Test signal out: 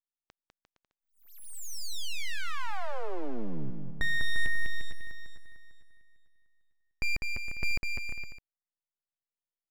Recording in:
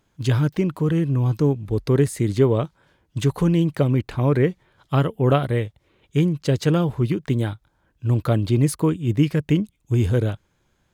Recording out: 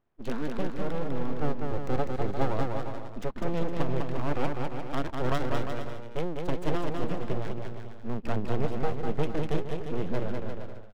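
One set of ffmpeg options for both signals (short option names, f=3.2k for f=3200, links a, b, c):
-filter_complex "[0:a]lowpass=f=7.6k:w=0.5412,lowpass=f=7.6k:w=1.3066,adynamicsmooth=sensitivity=2:basefreq=1.7k,aeval=exprs='abs(val(0))':c=same,asplit=2[a][b];[b]aecho=0:1:200|350|462.5|546.9|610.2:0.631|0.398|0.251|0.158|0.1[c];[a][c]amix=inputs=2:normalize=0,volume=-8dB"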